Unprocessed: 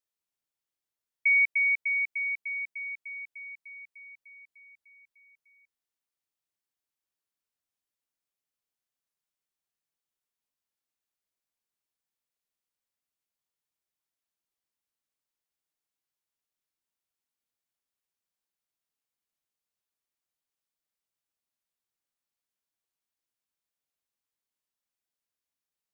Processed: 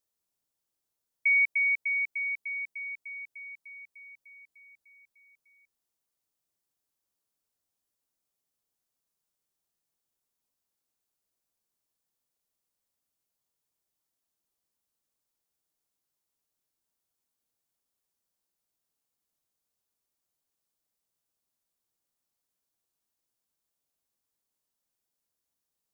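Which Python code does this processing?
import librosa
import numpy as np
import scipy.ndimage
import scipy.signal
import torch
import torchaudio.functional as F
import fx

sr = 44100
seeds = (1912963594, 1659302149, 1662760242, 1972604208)

y = fx.peak_eq(x, sr, hz=2200.0, db=-7.5, octaves=1.9)
y = y * 10.0 ** (6.5 / 20.0)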